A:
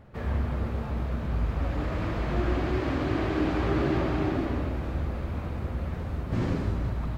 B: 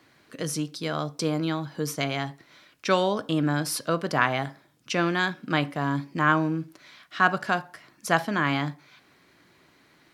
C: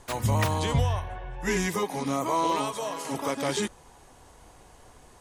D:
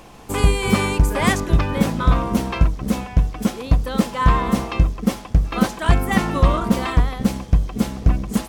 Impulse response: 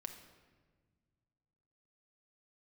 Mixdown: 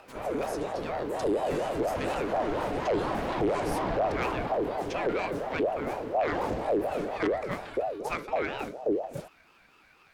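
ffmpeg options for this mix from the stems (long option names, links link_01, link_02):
-filter_complex "[0:a]volume=0dB[link_01];[1:a]equalizer=frequency=1900:width_type=o:width=0.28:gain=12.5,acompressor=mode=upward:threshold=-38dB:ratio=2.5,volume=-9.5dB[link_02];[2:a]volume=-14.5dB[link_03];[3:a]equalizer=frequency=61:width_type=o:width=1.6:gain=13.5,flanger=delay=19.5:depth=7.9:speed=1.5,adelay=800,volume=-13.5dB[link_04];[link_01][link_02][link_03][link_04]amix=inputs=4:normalize=0,asoftclip=type=tanh:threshold=-20dB,aeval=exprs='val(0)*sin(2*PI*530*n/s+530*0.35/4.2*sin(2*PI*4.2*n/s))':channel_layout=same"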